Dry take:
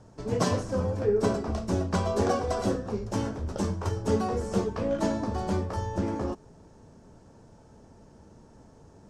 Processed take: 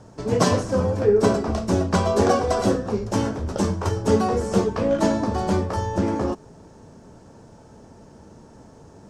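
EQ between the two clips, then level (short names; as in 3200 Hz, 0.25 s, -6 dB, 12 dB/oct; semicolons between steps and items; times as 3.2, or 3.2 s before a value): low shelf 64 Hz -7.5 dB; +7.5 dB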